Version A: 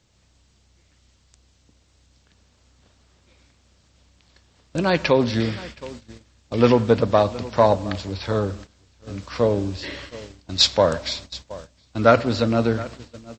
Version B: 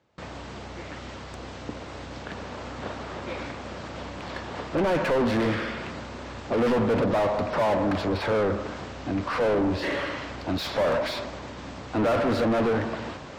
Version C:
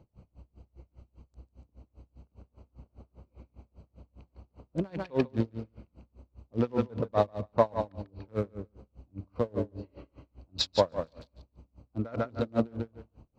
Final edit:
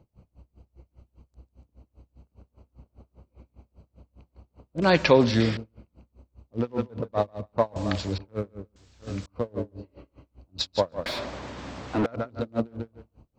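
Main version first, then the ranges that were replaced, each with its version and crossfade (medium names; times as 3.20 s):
C
4.82–5.57 s: from A
7.76–8.18 s: from A
8.76–9.26 s: from A
11.06–12.06 s: from B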